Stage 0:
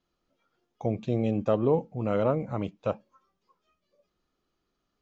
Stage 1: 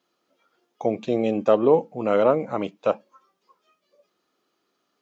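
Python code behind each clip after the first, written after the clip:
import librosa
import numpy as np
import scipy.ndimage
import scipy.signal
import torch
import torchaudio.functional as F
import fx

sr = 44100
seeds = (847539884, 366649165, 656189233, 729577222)

y = scipy.signal.sosfilt(scipy.signal.butter(2, 290.0, 'highpass', fs=sr, output='sos'), x)
y = y * librosa.db_to_amplitude(8.0)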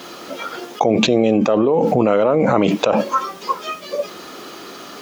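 y = fx.env_flatten(x, sr, amount_pct=100)
y = y * librosa.db_to_amplitude(-1.5)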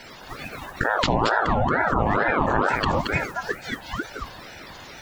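y = fx.spec_quant(x, sr, step_db=30)
y = y + 10.0 ** (-4.0 / 20.0) * np.pad(y, (int(226 * sr / 1000.0), 0))[:len(y)]
y = fx.ring_lfo(y, sr, carrier_hz=740.0, swing_pct=60, hz=2.2)
y = y * librosa.db_to_amplitude(-4.0)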